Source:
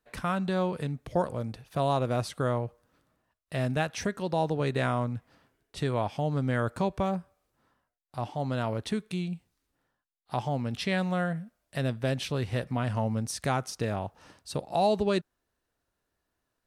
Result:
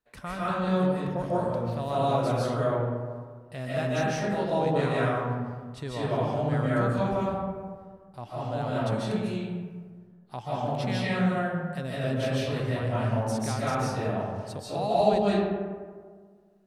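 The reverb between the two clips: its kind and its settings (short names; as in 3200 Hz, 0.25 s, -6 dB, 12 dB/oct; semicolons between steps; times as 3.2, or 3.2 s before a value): digital reverb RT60 1.7 s, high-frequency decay 0.4×, pre-delay 0.11 s, DRR -8.5 dB; gain -7 dB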